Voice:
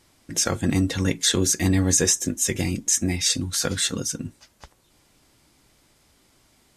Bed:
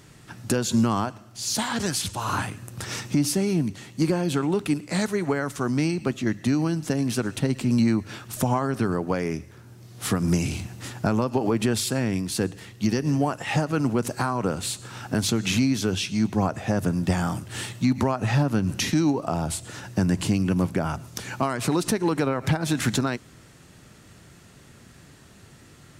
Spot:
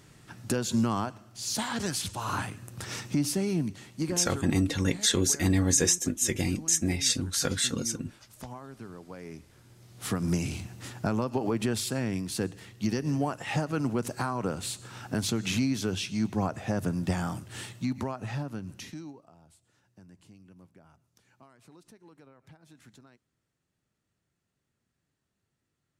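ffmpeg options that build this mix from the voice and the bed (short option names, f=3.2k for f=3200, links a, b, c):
-filter_complex "[0:a]adelay=3800,volume=-4dB[a];[1:a]volume=9dB,afade=t=out:st=3.69:d=0.91:silence=0.188365,afade=t=in:st=9.1:d=1.12:silence=0.199526,afade=t=out:st=17.1:d=2.21:silence=0.0501187[b];[a][b]amix=inputs=2:normalize=0"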